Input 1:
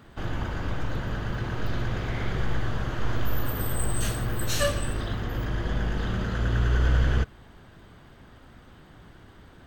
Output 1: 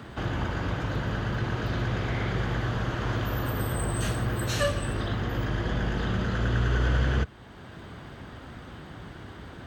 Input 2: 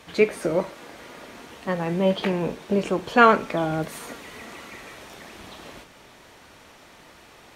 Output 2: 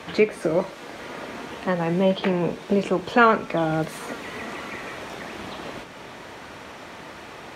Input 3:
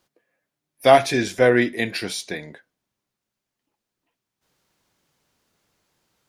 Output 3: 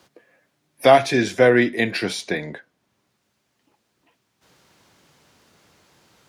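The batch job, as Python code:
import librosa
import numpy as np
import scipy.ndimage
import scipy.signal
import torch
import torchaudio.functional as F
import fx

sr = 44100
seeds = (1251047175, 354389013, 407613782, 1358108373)

y = scipy.signal.sosfilt(scipy.signal.butter(2, 60.0, 'highpass', fs=sr, output='sos'), x)
y = fx.high_shelf(y, sr, hz=9300.0, db=-9.0)
y = fx.band_squash(y, sr, depth_pct=40)
y = F.gain(torch.from_numpy(y), 2.0).numpy()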